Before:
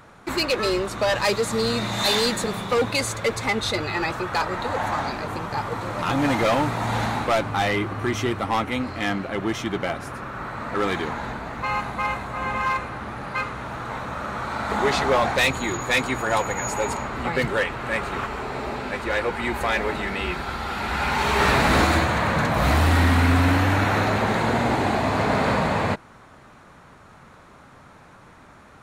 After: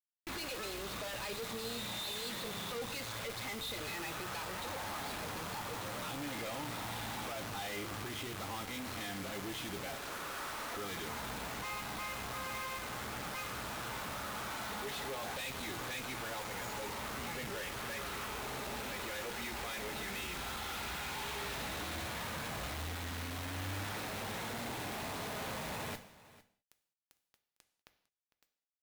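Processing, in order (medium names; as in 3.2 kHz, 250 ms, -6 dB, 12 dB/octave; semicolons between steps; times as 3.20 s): 9.96–10.77 s: high-pass 290 Hz 24 dB/octave; compression, threshold -27 dBFS, peak gain reduction 12 dB; resonant low-pass 3.6 kHz, resonance Q 2.7; bit crusher 6-bit; modulation noise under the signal 17 dB; valve stage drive 40 dB, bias 0.7; on a send: delay 453 ms -19 dB; on the sum: gated-style reverb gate 230 ms falling, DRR 9 dB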